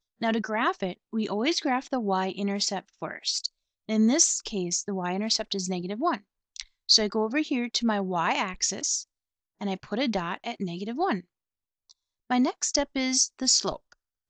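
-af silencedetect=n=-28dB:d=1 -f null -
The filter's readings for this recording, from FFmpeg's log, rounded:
silence_start: 11.17
silence_end: 12.31 | silence_duration: 1.13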